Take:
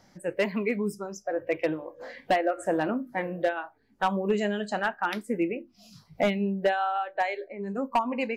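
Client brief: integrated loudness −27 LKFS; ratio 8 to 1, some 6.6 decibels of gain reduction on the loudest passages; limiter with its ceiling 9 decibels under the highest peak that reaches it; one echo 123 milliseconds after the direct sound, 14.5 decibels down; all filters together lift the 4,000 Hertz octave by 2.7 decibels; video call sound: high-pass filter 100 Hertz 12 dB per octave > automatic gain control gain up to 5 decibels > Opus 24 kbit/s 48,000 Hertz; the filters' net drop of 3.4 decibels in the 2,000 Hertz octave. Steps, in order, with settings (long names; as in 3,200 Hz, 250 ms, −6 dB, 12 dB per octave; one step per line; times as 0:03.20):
parametric band 2,000 Hz −6 dB
parametric band 4,000 Hz +7 dB
downward compressor 8 to 1, threshold −27 dBFS
brickwall limiter −24.5 dBFS
high-pass filter 100 Hz 12 dB per octave
single-tap delay 123 ms −14.5 dB
automatic gain control gain up to 5 dB
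level +8.5 dB
Opus 24 kbit/s 48,000 Hz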